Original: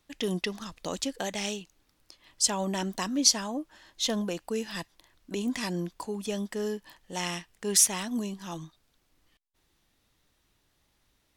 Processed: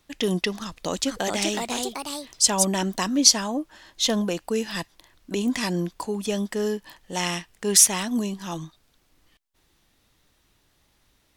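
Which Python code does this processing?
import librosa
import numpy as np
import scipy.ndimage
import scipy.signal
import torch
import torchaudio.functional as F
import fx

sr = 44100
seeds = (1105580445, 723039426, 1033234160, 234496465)

y = fx.echo_pitch(x, sr, ms=465, semitones=3, count=2, db_per_echo=-3.0, at=(0.6, 2.65))
y = y * librosa.db_to_amplitude(6.0)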